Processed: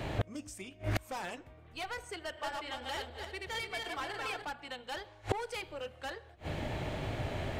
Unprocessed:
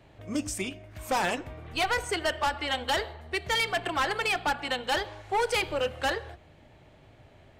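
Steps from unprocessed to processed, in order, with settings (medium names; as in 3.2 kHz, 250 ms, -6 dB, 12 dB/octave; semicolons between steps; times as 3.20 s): 2.22–4.45 s: backward echo that repeats 147 ms, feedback 50%, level -1.5 dB; inverted gate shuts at -35 dBFS, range -31 dB; trim +18 dB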